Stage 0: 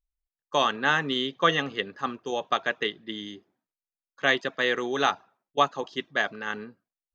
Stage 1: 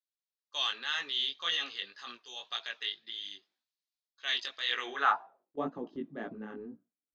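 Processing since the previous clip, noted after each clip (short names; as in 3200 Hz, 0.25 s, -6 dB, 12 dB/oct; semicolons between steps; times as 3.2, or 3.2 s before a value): band-pass sweep 4100 Hz -> 260 Hz, 4.64–5.64; transient shaper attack -3 dB, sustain +7 dB; chorus 1.9 Hz, delay 16.5 ms, depth 5 ms; gain +5.5 dB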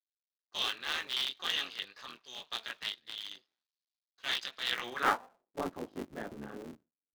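cycle switcher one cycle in 3, muted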